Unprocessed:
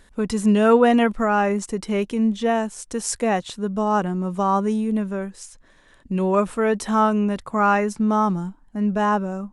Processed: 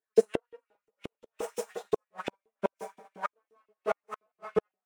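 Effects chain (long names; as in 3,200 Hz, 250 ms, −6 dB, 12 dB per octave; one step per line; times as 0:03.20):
lower of the sound and its delayed copy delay 6.4 ms
low-shelf EQ 73 Hz −5.5 dB
volume swells 456 ms
phase-vocoder stretch with locked phases 0.51×
coupled-rooms reverb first 0.54 s, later 4 s, from −18 dB, DRR −7.5 dB
auto-filter high-pass saw up 5.7 Hz 350–3,100 Hz
gate with flip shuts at −11 dBFS, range −29 dB
low-shelf EQ 410 Hz +8 dB
echo with shifted repeats 397 ms, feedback 52%, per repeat +57 Hz, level −24 dB
expander for the loud parts 2.5 to 1, over −44 dBFS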